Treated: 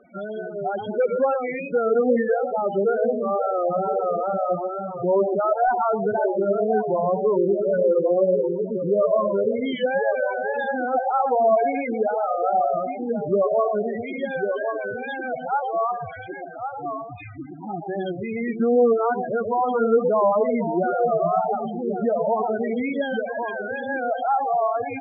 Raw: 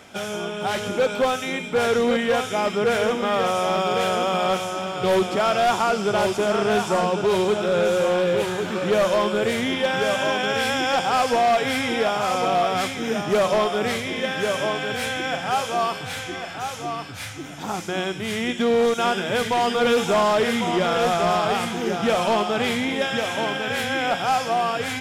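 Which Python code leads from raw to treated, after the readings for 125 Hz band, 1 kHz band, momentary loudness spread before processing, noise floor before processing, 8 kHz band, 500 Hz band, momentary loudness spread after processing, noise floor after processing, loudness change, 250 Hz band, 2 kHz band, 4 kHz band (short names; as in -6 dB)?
-4.5 dB, -1.0 dB, 7 LU, -33 dBFS, under -40 dB, +1.0 dB, 10 LU, -35 dBFS, -1.0 dB, -1.0 dB, -7.0 dB, under -20 dB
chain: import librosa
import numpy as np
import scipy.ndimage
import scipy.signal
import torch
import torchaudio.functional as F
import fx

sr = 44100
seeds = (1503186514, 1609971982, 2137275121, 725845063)

y = fx.echo_wet_bandpass(x, sr, ms=120, feedback_pct=38, hz=480.0, wet_db=-5)
y = fx.spec_topn(y, sr, count=8)
y = fx.wow_flutter(y, sr, seeds[0], rate_hz=2.1, depth_cents=86.0)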